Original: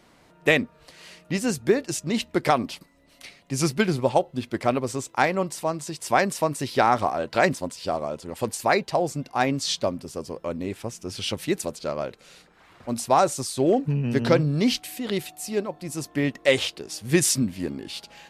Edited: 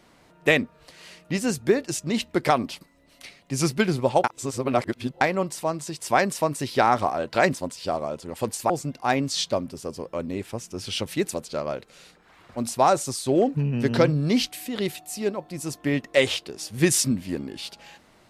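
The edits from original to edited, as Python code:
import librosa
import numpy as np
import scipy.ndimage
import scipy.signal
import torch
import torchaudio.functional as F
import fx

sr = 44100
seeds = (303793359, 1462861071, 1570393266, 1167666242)

y = fx.edit(x, sr, fx.reverse_span(start_s=4.24, length_s=0.97),
    fx.cut(start_s=8.7, length_s=0.31), tone=tone)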